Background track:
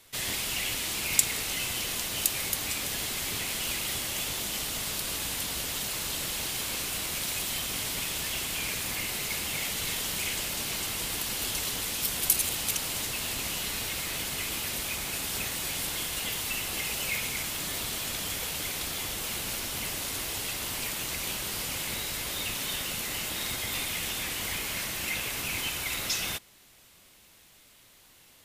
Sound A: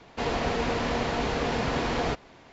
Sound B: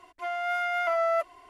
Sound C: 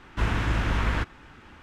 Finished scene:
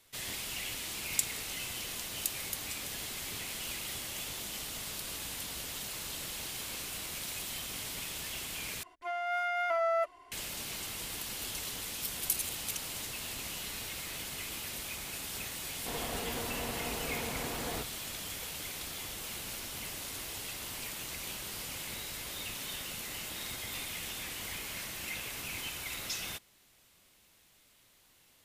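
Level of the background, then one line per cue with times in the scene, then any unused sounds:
background track −7.5 dB
0:08.83: overwrite with B −4 dB
0:15.68: mix in A −11.5 dB
not used: C

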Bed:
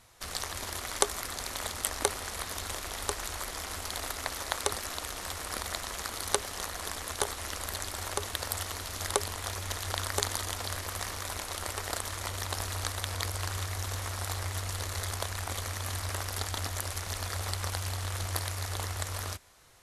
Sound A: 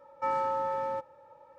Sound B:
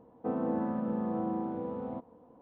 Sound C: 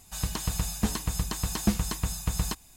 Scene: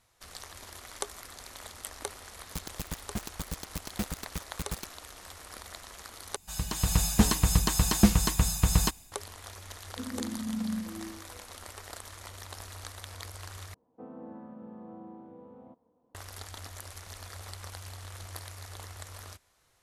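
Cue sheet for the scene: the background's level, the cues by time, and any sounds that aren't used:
bed −9.5 dB
0:02.32: mix in C −9.5 dB + bit reduction 4 bits
0:06.36: overwrite with C −4 dB + automatic gain control gain up to 10.5 dB
0:09.71: mix in B −4 dB + every bin expanded away from the loudest bin 4 to 1
0:13.74: overwrite with B −13.5 dB
not used: A

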